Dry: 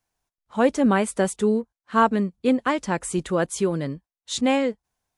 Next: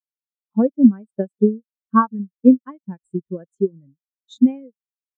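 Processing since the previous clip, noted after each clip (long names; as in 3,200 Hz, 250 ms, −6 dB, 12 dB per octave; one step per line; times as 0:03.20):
parametric band 680 Hz −5.5 dB 2.2 octaves
transient designer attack +10 dB, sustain −6 dB
every bin expanded away from the loudest bin 2.5 to 1
level +2.5 dB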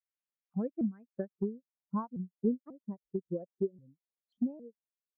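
downward compressor 3 to 1, threshold −26 dBFS, peak gain reduction 15 dB
low-pass filter sweep 2,200 Hz → 580 Hz, 0:00.87–0:02.22
pitch modulation by a square or saw wave saw up 3.7 Hz, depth 250 cents
level −8 dB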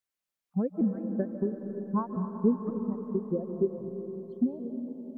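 comb and all-pass reverb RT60 4 s, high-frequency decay 0.75×, pre-delay 115 ms, DRR 4.5 dB
level +5 dB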